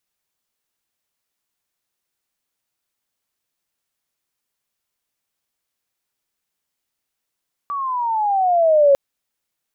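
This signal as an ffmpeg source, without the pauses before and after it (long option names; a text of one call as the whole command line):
ffmpeg -f lavfi -i "aevalsrc='pow(10,(-8.5+13.5*(t/1.25-1))/20)*sin(2*PI*1160*1.25/(-13*log(2)/12)*(exp(-13*log(2)/12*t/1.25)-1))':duration=1.25:sample_rate=44100" out.wav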